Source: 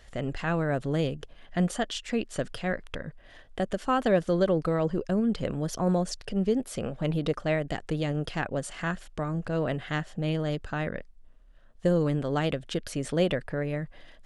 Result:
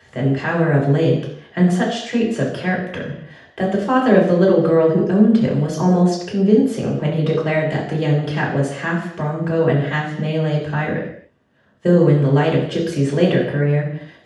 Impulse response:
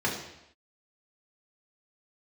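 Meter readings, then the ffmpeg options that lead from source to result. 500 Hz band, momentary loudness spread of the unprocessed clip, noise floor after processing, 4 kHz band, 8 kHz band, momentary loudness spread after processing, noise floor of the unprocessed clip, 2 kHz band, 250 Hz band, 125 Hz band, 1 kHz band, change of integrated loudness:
+11.0 dB, 9 LU, −51 dBFS, +6.5 dB, +3.5 dB, 9 LU, −53 dBFS, +10.5 dB, +12.0 dB, +12.5 dB, +9.5 dB, +11.5 dB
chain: -filter_complex "[0:a]highpass=90[link_01];[1:a]atrim=start_sample=2205,afade=type=out:start_time=0.34:duration=0.01,atrim=end_sample=15435[link_02];[link_01][link_02]afir=irnorm=-1:irlink=0,volume=-1dB"

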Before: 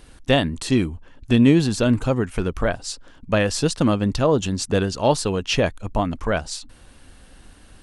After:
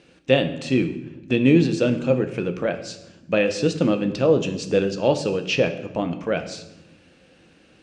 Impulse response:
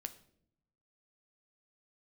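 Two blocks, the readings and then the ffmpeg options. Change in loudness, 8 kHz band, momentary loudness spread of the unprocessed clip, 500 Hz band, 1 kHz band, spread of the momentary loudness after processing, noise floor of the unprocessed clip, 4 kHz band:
−1.0 dB, −8.0 dB, 10 LU, +1.5 dB, −5.5 dB, 10 LU, −49 dBFS, −3.5 dB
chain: -filter_complex "[0:a]highpass=140,equalizer=frequency=160:width_type=q:width=4:gain=9,equalizer=frequency=330:width_type=q:width=4:gain=7,equalizer=frequency=510:width_type=q:width=4:gain=9,equalizer=frequency=1000:width_type=q:width=4:gain=-5,equalizer=frequency=2500:width_type=q:width=4:gain=9,lowpass=frequency=6900:width=0.5412,lowpass=frequency=6900:width=1.3066[link_01];[1:a]atrim=start_sample=2205,asetrate=24696,aresample=44100[link_02];[link_01][link_02]afir=irnorm=-1:irlink=0,volume=-5dB"

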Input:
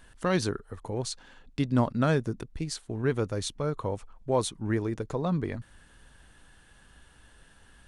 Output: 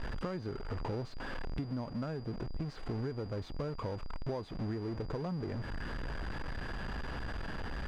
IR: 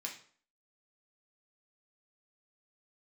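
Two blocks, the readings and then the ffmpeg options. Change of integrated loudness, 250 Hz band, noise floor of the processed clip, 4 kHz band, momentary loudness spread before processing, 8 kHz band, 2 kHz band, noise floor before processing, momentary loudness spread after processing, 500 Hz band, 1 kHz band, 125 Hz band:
−9.5 dB, −8.5 dB, −44 dBFS, −10.0 dB, 10 LU, below −20 dB, −5.0 dB, −58 dBFS, 4 LU, −9.5 dB, −8.5 dB, −6.5 dB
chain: -af "aeval=exprs='val(0)+0.5*0.0422*sgn(val(0))':channel_layout=same,acompressor=threshold=-31dB:ratio=16,aeval=exprs='val(0)+0.0178*sin(2*PI*4800*n/s)':channel_layout=same,adynamicsmooth=sensitivity=1.5:basefreq=1200,volume=-2.5dB"

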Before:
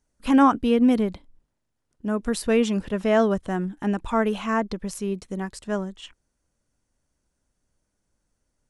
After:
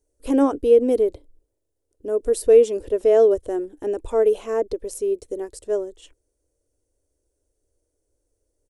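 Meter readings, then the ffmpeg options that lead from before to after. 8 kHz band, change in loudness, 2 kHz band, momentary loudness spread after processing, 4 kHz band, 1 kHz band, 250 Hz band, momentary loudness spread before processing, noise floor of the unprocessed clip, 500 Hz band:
+1.5 dB, +3.0 dB, below −10 dB, 13 LU, can't be measured, −7.0 dB, −5.0 dB, 12 LU, −78 dBFS, +8.5 dB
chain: -af "firequalizer=gain_entry='entry(110,0);entry(170,-28);entry(290,2);entry(450,10);entry(780,-7);entry(1200,-13);entry(8600,2)':delay=0.05:min_phase=1,volume=1dB"

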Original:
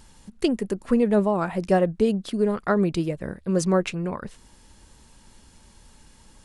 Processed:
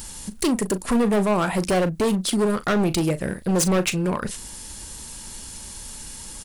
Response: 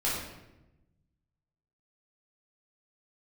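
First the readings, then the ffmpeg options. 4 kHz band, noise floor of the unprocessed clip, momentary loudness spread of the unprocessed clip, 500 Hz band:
+8.5 dB, −54 dBFS, 10 LU, 0.0 dB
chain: -filter_complex "[0:a]aemphasis=mode=production:type=75kf,asplit=2[link_01][link_02];[link_02]acompressor=threshold=-33dB:ratio=6,volume=1.5dB[link_03];[link_01][link_03]amix=inputs=2:normalize=0,asoftclip=type=hard:threshold=-20dB,asplit=2[link_04][link_05];[link_05]adelay=38,volume=-13dB[link_06];[link_04][link_06]amix=inputs=2:normalize=0,volume=2.5dB"

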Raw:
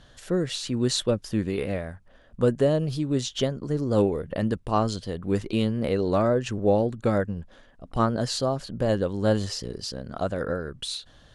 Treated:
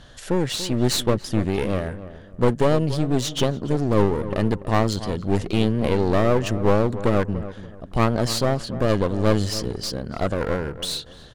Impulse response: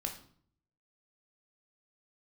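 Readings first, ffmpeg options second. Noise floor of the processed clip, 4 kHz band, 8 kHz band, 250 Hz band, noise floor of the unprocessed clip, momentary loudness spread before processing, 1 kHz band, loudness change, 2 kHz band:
−43 dBFS, +4.0 dB, +4.5 dB, +3.5 dB, −55 dBFS, 10 LU, +4.5 dB, +3.5 dB, +6.0 dB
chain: -filter_complex "[0:a]acontrast=61,aeval=exprs='clip(val(0),-1,0.0398)':channel_layout=same,asplit=2[link_01][link_02];[link_02]adelay=288,lowpass=frequency=1400:poles=1,volume=-13dB,asplit=2[link_03][link_04];[link_04]adelay=288,lowpass=frequency=1400:poles=1,volume=0.3,asplit=2[link_05][link_06];[link_06]adelay=288,lowpass=frequency=1400:poles=1,volume=0.3[link_07];[link_01][link_03][link_05][link_07]amix=inputs=4:normalize=0"

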